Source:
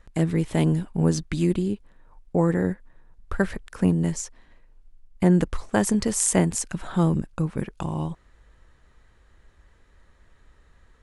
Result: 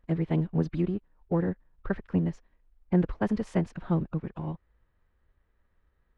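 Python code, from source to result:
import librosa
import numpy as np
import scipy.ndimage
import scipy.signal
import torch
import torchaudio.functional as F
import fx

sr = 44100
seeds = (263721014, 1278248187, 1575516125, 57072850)

y = fx.law_mismatch(x, sr, coded='A')
y = fx.air_absorb(y, sr, metres=320.0)
y = fx.stretch_vocoder(y, sr, factor=0.56)
y = y * librosa.db_to_amplitude(-3.5)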